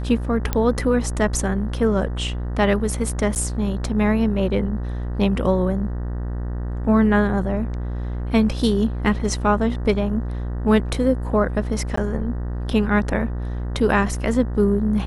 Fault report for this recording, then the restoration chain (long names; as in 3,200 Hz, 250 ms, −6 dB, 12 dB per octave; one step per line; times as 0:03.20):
mains buzz 60 Hz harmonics 32 −26 dBFS
0:00.53: click −8 dBFS
0:03.35–0:03.36: drop-out 9.6 ms
0:11.96–0:11.97: drop-out 14 ms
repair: click removal
hum removal 60 Hz, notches 32
repair the gap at 0:03.35, 9.6 ms
repair the gap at 0:11.96, 14 ms